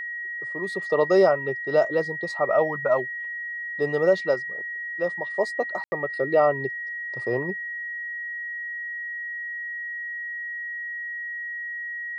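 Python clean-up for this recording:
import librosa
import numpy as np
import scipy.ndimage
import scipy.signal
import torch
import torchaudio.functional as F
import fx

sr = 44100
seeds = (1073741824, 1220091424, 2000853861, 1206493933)

y = fx.notch(x, sr, hz=1900.0, q=30.0)
y = fx.fix_ambience(y, sr, seeds[0], print_start_s=3.13, print_end_s=3.63, start_s=5.84, end_s=5.92)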